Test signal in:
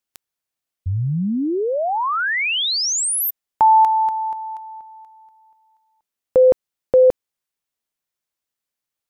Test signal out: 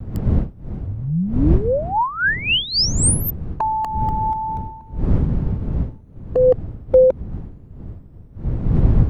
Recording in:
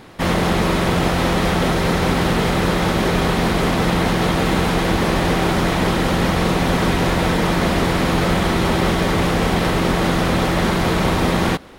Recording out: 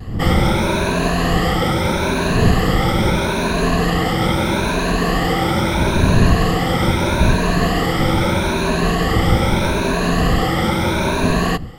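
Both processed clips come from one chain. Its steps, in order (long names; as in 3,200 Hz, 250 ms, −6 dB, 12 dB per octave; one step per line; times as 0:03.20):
rippled gain that drifts along the octave scale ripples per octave 1.5, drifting +0.78 Hz, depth 16 dB
wind on the microphone 120 Hz −19 dBFS
pitch vibrato 0.44 Hz 15 cents
level −2.5 dB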